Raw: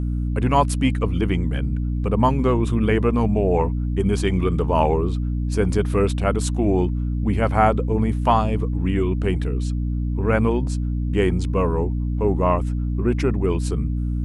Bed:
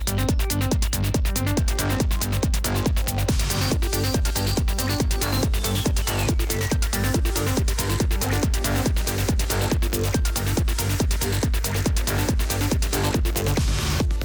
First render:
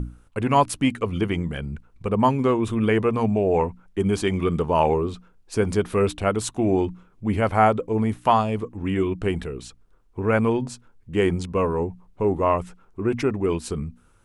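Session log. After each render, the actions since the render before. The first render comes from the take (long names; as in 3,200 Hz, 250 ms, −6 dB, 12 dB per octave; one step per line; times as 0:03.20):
mains-hum notches 60/120/180/240/300 Hz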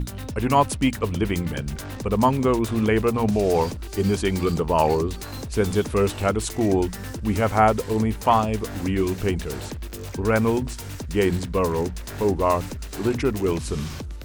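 mix in bed −11.5 dB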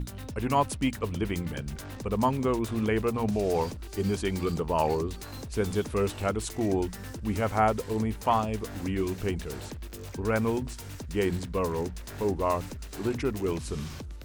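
level −6.5 dB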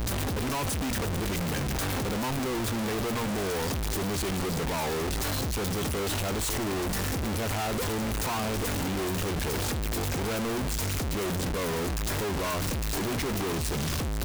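sign of each sample alone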